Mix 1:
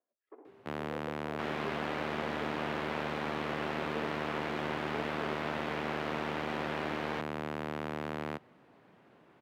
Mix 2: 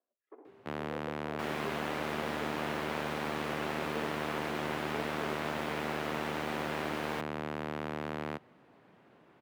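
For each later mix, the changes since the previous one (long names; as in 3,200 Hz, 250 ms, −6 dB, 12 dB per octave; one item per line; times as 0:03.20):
second sound: remove low-pass filter 4,300 Hz 12 dB per octave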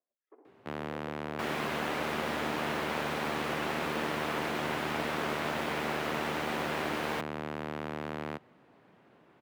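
speech −5.0 dB
second sound +4.0 dB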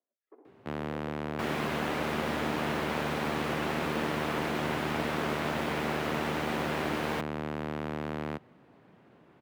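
master: add low-shelf EQ 300 Hz +6.5 dB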